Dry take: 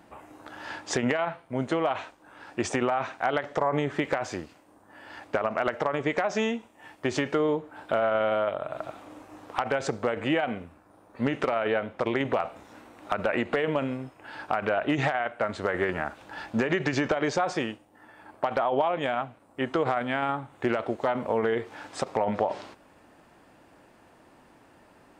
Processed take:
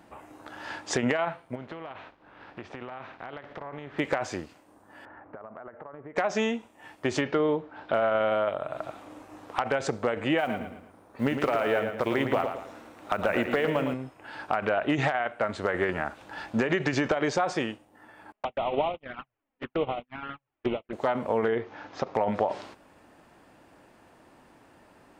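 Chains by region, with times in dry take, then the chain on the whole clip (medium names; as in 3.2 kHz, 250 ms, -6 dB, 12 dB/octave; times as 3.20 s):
1.54–3.98 s: spectral contrast reduction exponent 0.67 + compression 3:1, threshold -38 dBFS + distance through air 340 m
5.05–6.16 s: low-pass 1.6 kHz 24 dB/octave + compression 3:1, threshold -45 dBFS
7.21–7.94 s: low-pass 5.1 kHz 24 dB/octave + hum notches 60/120/180 Hz
10.38–13.94 s: block-companded coder 7-bit + feedback delay 112 ms, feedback 38%, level -7.5 dB
18.32–20.93 s: one-bit delta coder 16 kbps, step -24.5 dBFS + gate -26 dBFS, range -52 dB + touch-sensitive flanger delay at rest 4.8 ms, full sweep at -26.5 dBFS
21.48–22.15 s: steep low-pass 6.7 kHz 72 dB/octave + treble shelf 3.6 kHz -9.5 dB
whole clip: none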